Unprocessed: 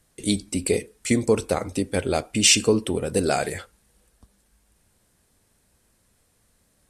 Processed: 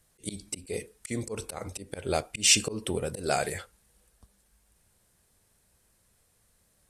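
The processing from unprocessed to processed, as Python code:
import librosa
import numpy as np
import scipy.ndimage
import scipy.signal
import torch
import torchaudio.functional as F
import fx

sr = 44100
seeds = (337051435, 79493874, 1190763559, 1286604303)

y = fx.high_shelf(x, sr, hz=9600.0, db=4.5)
y = fx.auto_swell(y, sr, attack_ms=164.0)
y = fx.peak_eq(y, sr, hz=270.0, db=-5.5, octaves=0.62)
y = F.gain(torch.from_numpy(y), -3.5).numpy()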